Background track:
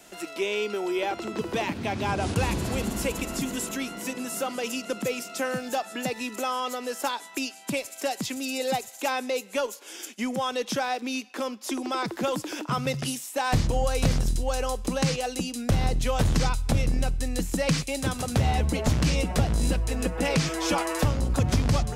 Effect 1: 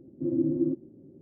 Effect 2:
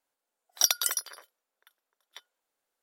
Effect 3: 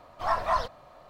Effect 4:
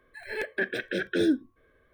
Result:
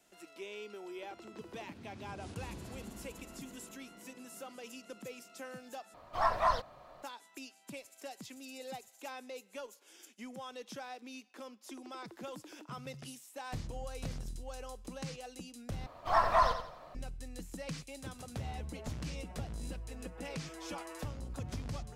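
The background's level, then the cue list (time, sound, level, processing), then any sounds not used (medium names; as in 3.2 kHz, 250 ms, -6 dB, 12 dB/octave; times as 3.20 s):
background track -17.5 dB
5.94 s: replace with 3 -3 dB
15.86 s: replace with 3 -1 dB + feedback delay 88 ms, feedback 35%, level -8.5 dB
not used: 1, 2, 4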